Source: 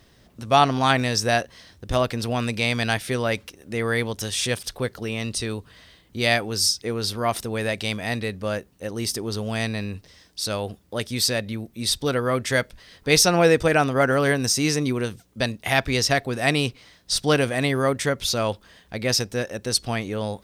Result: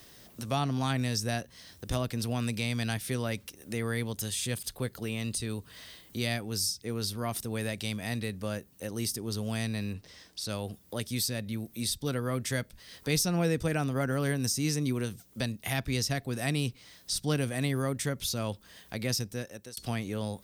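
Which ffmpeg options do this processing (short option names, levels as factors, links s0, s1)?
-filter_complex "[0:a]asettb=1/sr,asplit=3[s0][s1][s2];[s0]atrim=end=4.164[s3];[s1]atrim=start=4.16:end=5.53,asetpts=PTS-STARTPTS,afade=t=in:d=0.004:c=qsin,afade=t=out:st=1.366:d=0.004:c=qsin,bandreject=f=5600:w=9.2[s4];[s2]atrim=start=5.526[s5];[s3][s4]acrossfade=d=0.004:c1=hsin:c2=qsin[s6];[s6][s5]acrossfade=d=0.004:c1=qsin:c2=hsin,asettb=1/sr,asplit=3[s7][s8][s9];[s7]atrim=end=9.934[s10];[s8]atrim=start=9.93:end=10.49,asetpts=PTS-STARTPTS,afade=t=in:d=0.004:c=qsin,afade=t=out:st=0.556:d=0.004:c=qsin,lowpass=f=3100:p=1[s11];[s9]atrim=start=10.486[s12];[s10][s11]acrossfade=d=0.004:c1=hsin:c2=qsin[s13];[s13][s12]acrossfade=d=0.004:c1=qsin:c2=hsin,asplit=2[s14][s15];[s14]atrim=end=19.77,asetpts=PTS-STARTPTS,afade=t=out:st=19.24:d=0.53[s16];[s15]atrim=start=19.77,asetpts=PTS-STARTPTS,afade=t=in:d=0.004:c=hsin[s17];[s16][s17]concat=n=2:v=0:a=1,aemphasis=mode=production:type=50kf,acrossover=split=240[s18][s19];[s19]acompressor=threshold=0.00708:ratio=2[s20];[s18][s20]amix=inputs=2:normalize=0,lowshelf=f=110:g=-8"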